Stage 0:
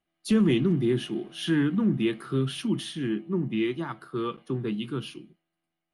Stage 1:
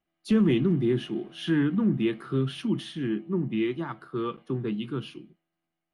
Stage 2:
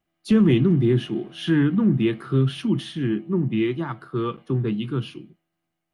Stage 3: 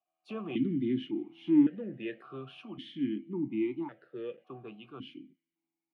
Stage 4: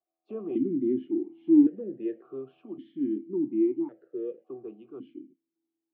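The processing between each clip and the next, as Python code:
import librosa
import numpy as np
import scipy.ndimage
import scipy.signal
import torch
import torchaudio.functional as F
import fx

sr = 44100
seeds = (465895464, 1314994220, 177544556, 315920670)

y1 = fx.lowpass(x, sr, hz=3100.0, slope=6)
y2 = fx.peak_eq(y1, sr, hz=110.0, db=8.0, octaves=0.66)
y2 = y2 * librosa.db_to_amplitude(4.0)
y3 = fx.vowel_held(y2, sr, hz=1.8)
y4 = fx.bandpass_q(y3, sr, hz=370.0, q=2.6)
y4 = y4 * librosa.db_to_amplitude(8.0)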